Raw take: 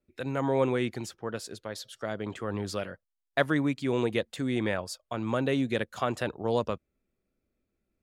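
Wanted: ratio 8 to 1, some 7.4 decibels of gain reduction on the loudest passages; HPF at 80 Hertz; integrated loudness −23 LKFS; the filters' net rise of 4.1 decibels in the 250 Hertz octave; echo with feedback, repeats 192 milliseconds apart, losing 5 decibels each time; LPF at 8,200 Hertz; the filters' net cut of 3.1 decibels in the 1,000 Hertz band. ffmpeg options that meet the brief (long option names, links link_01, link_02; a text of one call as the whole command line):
ffmpeg -i in.wav -af "highpass=80,lowpass=8200,equalizer=frequency=250:width_type=o:gain=5,equalizer=frequency=1000:width_type=o:gain=-4.5,acompressor=threshold=-27dB:ratio=8,aecho=1:1:192|384|576|768|960|1152|1344:0.562|0.315|0.176|0.0988|0.0553|0.031|0.0173,volume=9.5dB" out.wav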